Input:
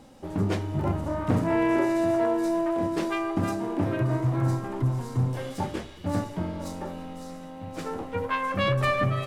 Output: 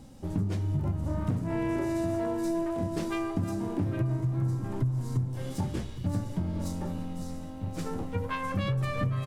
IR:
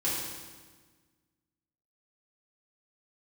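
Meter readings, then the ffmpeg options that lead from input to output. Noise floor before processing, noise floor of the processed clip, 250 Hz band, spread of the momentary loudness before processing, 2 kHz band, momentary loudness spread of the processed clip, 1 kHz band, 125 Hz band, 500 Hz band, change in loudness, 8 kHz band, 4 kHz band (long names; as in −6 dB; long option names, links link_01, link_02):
−41 dBFS, −39 dBFS, −4.0 dB, 12 LU, −8.5 dB, 6 LU, −8.0 dB, −1.0 dB, −7.0 dB, −4.0 dB, −2.0 dB, −7.0 dB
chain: -filter_complex "[0:a]bass=frequency=250:gain=13,treble=frequency=4000:gain=7,acompressor=threshold=-20dB:ratio=10,asplit=2[link_01][link_02];[link_02]adelay=816.3,volume=-13dB,highshelf=frequency=4000:gain=-18.4[link_03];[link_01][link_03]amix=inputs=2:normalize=0,volume=-5.5dB"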